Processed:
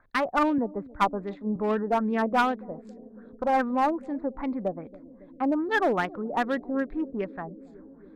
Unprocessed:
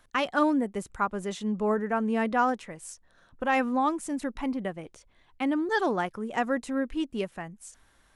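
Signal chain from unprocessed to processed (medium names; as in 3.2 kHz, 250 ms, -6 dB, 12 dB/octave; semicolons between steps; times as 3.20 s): local Wiener filter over 15 samples; LFO low-pass sine 2.5 Hz 630–3600 Hz; one-sided clip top -20.5 dBFS; on a send: bucket-brigade echo 277 ms, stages 1024, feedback 79%, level -18.5 dB; 0.58–1.56 s: on the sum: three bands expanded up and down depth 40%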